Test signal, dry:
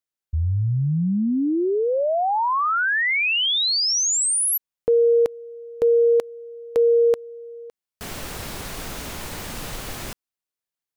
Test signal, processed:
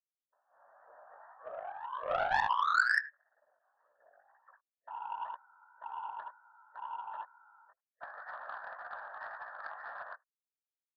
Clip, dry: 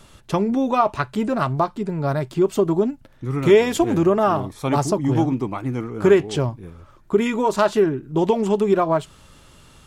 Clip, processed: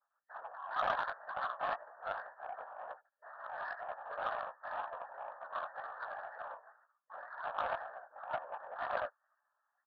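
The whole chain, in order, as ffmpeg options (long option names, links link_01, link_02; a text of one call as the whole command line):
ffmpeg -i in.wav -filter_complex "[0:a]asplit=2[link_01][link_02];[link_02]adelay=80,highpass=300,lowpass=3400,asoftclip=type=hard:threshold=-13dB,volume=-10dB[link_03];[link_01][link_03]amix=inputs=2:normalize=0,agate=range=-47dB:threshold=-37dB:ratio=3:release=27:detection=peak,aecho=1:1:5.8:0.84,acompressor=threshold=-26dB:ratio=6:attack=23:release=24:knee=1:detection=rms,alimiter=limit=-23dB:level=0:latency=1:release=36,dynaudnorm=framelen=190:gausssize=5:maxgain=5dB,aeval=exprs='clip(val(0),-1,0.0141)':channel_layout=same,afftfilt=real='re*between(b*sr/4096,580,1800)':imag='im*between(b*sr/4096,580,1800)':win_size=4096:overlap=0.75,crystalizer=i=8:c=0,afftfilt=real='hypot(re,im)*cos(2*PI*random(0))':imag='hypot(re,im)*sin(2*PI*random(1))':win_size=512:overlap=0.75,flanger=delay=15:depth=6:speed=2,aeval=exprs='0.133*(cos(1*acos(clip(val(0)/0.133,-1,1)))-cos(1*PI/2))+0.00422*(cos(3*acos(clip(val(0)/0.133,-1,1)))-cos(3*PI/2))+0.00944*(cos(7*acos(clip(val(0)/0.133,-1,1)))-cos(7*PI/2))':channel_layout=same,volume=5dB" out.wav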